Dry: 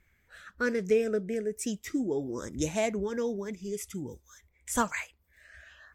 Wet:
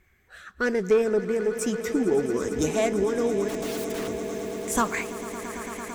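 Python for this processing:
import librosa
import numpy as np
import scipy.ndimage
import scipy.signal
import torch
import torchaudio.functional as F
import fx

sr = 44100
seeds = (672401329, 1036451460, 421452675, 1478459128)

p1 = fx.cheby_harmonics(x, sr, harmonics=(5, 6), levels_db=(-23, -27), full_scale_db=-14.5)
p2 = fx.small_body(p1, sr, hz=(380.0, 750.0, 1100.0), ring_ms=45, db=8)
p3 = fx.overflow_wrap(p2, sr, gain_db=35.0, at=(3.48, 4.07), fade=0.02)
p4 = p3 + fx.echo_swell(p3, sr, ms=112, loudest=8, wet_db=-16.0, dry=0)
y = p4 * librosa.db_to_amplitude(1.5)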